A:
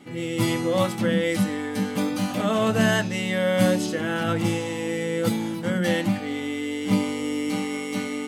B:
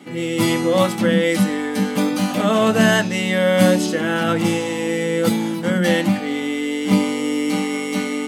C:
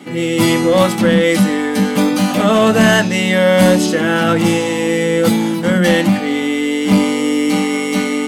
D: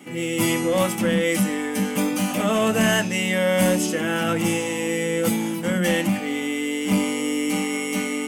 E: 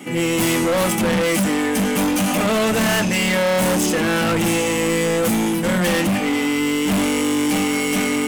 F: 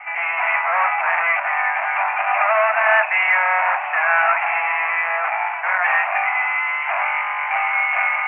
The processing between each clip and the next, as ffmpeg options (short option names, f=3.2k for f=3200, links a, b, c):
-af "highpass=f=140:w=0.5412,highpass=f=140:w=1.3066,volume=6dB"
-af "acontrast=85,volume=-1dB"
-af "aexciter=amount=1.4:drive=3.6:freq=2.2k,volume=-9dB"
-af "asoftclip=type=hard:threshold=-25dB,volume=8.5dB"
-af "asuperpass=centerf=1300:order=20:qfactor=0.69,volume=7.5dB"